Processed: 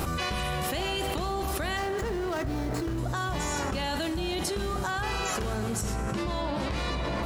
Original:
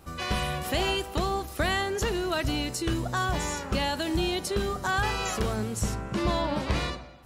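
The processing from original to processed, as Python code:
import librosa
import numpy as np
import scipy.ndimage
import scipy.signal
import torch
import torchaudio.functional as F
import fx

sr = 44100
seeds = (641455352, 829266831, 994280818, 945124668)

y = fx.median_filter(x, sr, points=15, at=(1.77, 2.98))
y = fx.rev_plate(y, sr, seeds[0], rt60_s=4.3, hf_ratio=0.5, predelay_ms=0, drr_db=10.0)
y = fx.env_flatten(y, sr, amount_pct=100)
y = y * librosa.db_to_amplitude(-7.5)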